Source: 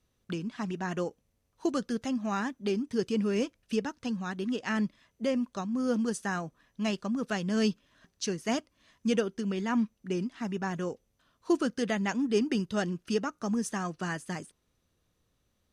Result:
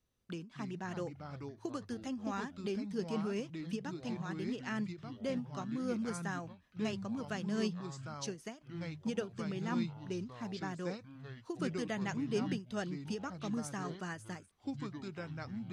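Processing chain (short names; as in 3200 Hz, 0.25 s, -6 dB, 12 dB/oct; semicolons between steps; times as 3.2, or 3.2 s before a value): echoes that change speed 0.184 s, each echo -4 st, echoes 3, each echo -6 dB; ending taper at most 190 dB/s; gain -8 dB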